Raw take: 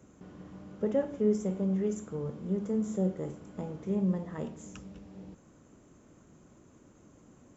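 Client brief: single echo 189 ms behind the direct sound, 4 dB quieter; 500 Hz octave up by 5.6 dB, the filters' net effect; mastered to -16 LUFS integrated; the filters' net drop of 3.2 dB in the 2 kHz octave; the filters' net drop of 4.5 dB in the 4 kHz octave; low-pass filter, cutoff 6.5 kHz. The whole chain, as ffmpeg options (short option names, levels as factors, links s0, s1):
-af "lowpass=6500,equalizer=f=500:t=o:g=7,equalizer=f=2000:t=o:g=-3.5,equalizer=f=4000:t=o:g=-4.5,aecho=1:1:189:0.631,volume=3.98"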